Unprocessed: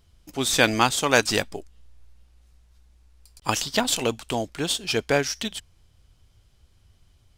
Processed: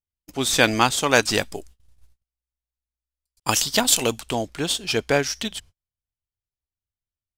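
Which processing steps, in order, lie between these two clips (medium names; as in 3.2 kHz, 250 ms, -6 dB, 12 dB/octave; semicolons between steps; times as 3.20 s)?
gate -45 dBFS, range -38 dB; 1.42–4.21 s: treble shelf 5.8 kHz +10 dB; trim +1.5 dB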